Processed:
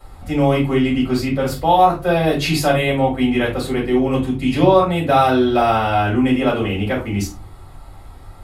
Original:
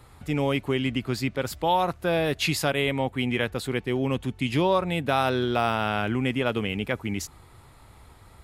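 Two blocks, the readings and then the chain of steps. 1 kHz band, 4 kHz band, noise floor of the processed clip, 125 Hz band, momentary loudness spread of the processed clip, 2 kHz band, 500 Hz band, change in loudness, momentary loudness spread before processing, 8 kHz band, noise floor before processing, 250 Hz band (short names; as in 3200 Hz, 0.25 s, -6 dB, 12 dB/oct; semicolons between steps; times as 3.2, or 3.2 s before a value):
+10.5 dB, +4.0 dB, -39 dBFS, +8.0 dB, 7 LU, +5.0 dB, +9.0 dB, +9.0 dB, 5 LU, +4.0 dB, -52 dBFS, +10.0 dB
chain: shoebox room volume 130 m³, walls furnished, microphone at 5.3 m; gain -4.5 dB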